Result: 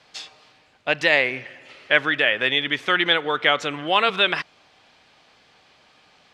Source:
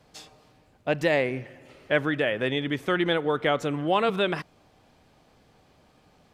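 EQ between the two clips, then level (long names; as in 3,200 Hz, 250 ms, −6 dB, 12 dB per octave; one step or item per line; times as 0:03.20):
low-pass filter 3,700 Hz 12 dB per octave
spectral tilt +2.5 dB per octave
tilt shelving filter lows −5 dB, about 1,100 Hz
+5.5 dB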